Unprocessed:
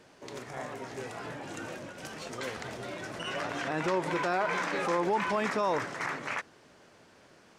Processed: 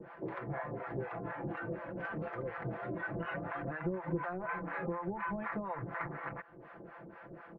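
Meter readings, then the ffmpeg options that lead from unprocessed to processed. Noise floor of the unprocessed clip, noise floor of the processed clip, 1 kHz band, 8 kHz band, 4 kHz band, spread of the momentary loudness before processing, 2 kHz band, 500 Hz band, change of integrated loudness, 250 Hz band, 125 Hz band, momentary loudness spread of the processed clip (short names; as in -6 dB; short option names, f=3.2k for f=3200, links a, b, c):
-59 dBFS, -54 dBFS, -7.5 dB, under -35 dB, -22.5 dB, 13 LU, -6.5 dB, -7.0 dB, -6.5 dB, -3.0 dB, +2.0 dB, 14 LU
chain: -filter_complex "[0:a]lowpass=f=1.8k:w=0.5412,lowpass=f=1.8k:w=1.3066,aecho=1:1:5.9:0.79,acrossover=split=110[a][b];[b]acompressor=threshold=-43dB:ratio=6[c];[a][c]amix=inputs=2:normalize=0,acrossover=split=610[d][e];[d]aeval=exprs='val(0)*(1-1/2+1/2*cos(2*PI*4.1*n/s))':c=same[f];[e]aeval=exprs='val(0)*(1-1/2-1/2*cos(2*PI*4.1*n/s))':c=same[g];[f][g]amix=inputs=2:normalize=0,volume=10.5dB"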